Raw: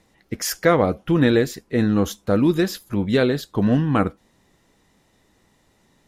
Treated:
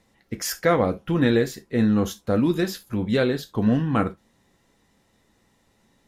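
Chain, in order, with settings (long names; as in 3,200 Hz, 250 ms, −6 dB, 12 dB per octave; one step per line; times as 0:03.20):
reverb whose tail is shaped and stops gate 90 ms falling, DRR 8 dB
level −3.5 dB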